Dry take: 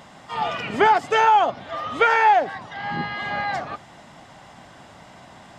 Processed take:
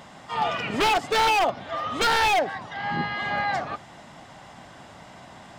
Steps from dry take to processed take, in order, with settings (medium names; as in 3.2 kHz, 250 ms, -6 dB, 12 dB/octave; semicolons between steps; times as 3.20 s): wavefolder -15.5 dBFS